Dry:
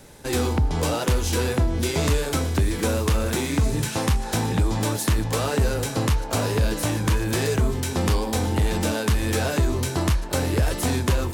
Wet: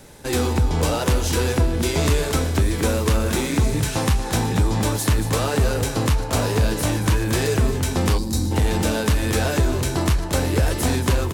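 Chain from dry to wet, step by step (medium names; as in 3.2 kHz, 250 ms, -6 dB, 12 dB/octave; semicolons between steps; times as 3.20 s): delay 229 ms -10.5 dB; time-frequency box 8.18–8.52 s, 380–3700 Hz -13 dB; trim +2 dB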